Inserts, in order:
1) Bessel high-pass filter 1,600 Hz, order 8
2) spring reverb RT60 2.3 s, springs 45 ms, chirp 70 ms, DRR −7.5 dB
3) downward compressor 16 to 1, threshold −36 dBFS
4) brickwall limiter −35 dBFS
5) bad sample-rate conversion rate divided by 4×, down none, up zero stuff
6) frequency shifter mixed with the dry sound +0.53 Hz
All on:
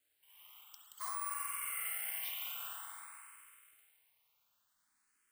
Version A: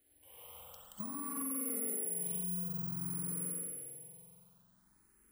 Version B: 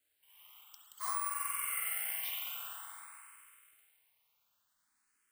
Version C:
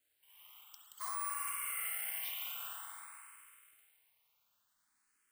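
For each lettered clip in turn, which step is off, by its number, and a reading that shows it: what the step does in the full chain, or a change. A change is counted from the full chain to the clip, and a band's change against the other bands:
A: 1, 500 Hz band +25.0 dB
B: 4, change in momentary loudness spread +2 LU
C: 3, average gain reduction 2.0 dB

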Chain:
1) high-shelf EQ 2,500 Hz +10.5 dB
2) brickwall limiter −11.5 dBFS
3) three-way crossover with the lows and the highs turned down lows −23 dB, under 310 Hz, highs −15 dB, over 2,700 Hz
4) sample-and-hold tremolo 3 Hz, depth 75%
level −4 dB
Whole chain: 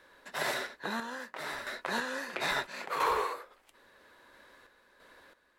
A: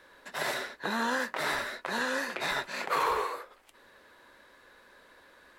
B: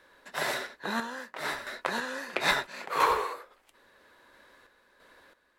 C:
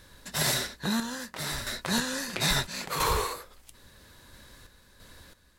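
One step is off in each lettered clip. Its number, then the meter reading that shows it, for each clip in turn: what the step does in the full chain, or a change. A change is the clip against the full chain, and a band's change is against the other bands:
4, change in crest factor −2.0 dB
2, change in crest factor +4.5 dB
3, 125 Hz band +12.5 dB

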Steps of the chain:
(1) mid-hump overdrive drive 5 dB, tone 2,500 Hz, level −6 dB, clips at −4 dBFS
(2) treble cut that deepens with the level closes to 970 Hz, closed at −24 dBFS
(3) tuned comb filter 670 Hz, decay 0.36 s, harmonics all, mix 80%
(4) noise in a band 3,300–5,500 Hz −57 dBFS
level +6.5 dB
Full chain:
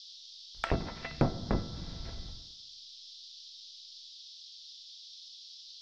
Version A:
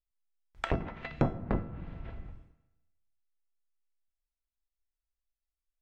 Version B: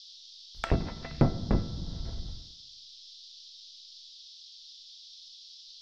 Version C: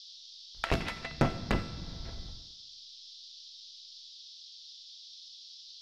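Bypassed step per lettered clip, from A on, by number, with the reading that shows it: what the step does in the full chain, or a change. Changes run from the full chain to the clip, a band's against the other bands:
4, 4 kHz band −13.5 dB
1, change in crest factor −2.5 dB
2, 2 kHz band +4.5 dB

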